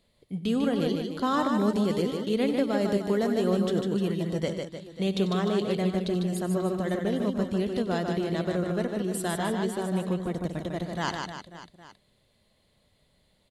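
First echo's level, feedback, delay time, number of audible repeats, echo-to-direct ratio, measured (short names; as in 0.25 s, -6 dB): -14.0 dB, no steady repeat, 94 ms, 5, -3.0 dB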